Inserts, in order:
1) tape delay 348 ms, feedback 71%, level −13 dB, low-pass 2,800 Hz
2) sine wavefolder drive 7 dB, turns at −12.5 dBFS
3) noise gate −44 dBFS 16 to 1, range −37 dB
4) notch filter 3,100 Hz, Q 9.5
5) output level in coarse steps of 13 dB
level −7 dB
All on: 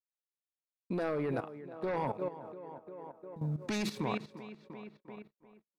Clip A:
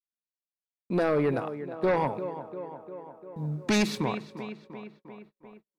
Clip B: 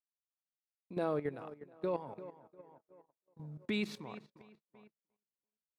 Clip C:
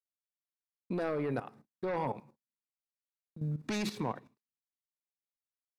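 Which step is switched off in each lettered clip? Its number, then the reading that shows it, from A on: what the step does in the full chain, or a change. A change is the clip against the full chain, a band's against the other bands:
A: 5, change in crest factor −3.5 dB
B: 2, distortion level −8 dB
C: 1, change in momentary loudness spread −6 LU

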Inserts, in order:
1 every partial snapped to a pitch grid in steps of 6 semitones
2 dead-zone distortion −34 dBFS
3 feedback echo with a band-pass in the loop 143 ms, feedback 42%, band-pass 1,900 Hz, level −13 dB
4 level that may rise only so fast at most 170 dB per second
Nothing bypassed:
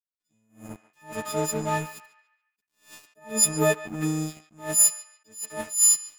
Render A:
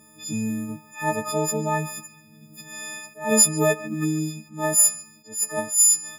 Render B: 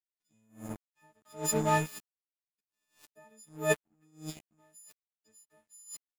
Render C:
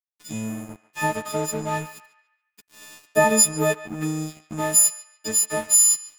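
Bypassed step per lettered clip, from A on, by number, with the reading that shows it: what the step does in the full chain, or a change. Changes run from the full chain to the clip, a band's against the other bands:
2, distortion level −16 dB
3, change in momentary loudness spread +2 LU
4, 1 kHz band +3.0 dB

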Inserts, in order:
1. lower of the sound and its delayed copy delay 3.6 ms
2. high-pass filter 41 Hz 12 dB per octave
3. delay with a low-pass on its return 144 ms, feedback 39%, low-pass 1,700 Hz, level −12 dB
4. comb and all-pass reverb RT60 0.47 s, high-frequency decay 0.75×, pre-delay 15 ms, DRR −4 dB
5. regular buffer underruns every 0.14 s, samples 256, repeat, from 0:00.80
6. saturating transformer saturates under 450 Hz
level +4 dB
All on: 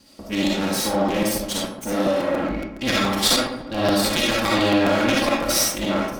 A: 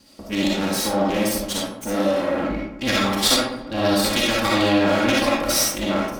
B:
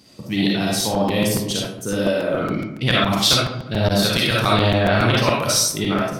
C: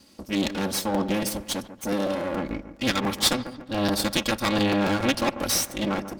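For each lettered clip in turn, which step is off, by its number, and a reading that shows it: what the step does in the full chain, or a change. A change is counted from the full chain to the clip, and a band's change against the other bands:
5, change in crest factor +2.0 dB
1, 125 Hz band +8.0 dB
4, 125 Hz band +2.5 dB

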